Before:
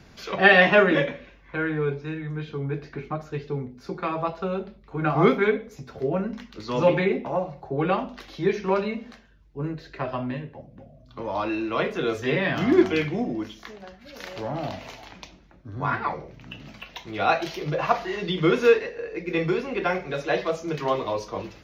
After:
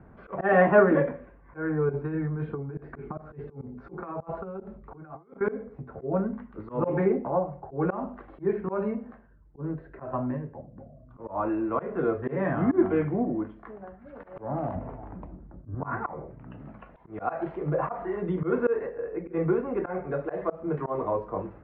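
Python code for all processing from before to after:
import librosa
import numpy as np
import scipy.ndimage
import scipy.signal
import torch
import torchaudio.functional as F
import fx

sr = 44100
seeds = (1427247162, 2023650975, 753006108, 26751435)

y = fx.chain(x, sr, fx.over_compress(threshold_db=-32.0, ratio=-0.5),
    fx.bass_treble(bass_db=-1, treble_db=11), at=(1.89, 5.41))
y = fx.chain(y, sr, fx.lowpass(hz=1300.0, slope=6),
    fx.low_shelf(hz=410.0, db=10.0), at=(14.75, 15.75))
y = scipy.signal.sosfilt(scipy.signal.butter(4, 1400.0, 'lowpass', fs=sr, output='sos'), y)
y = fx.auto_swell(y, sr, attack_ms=138.0)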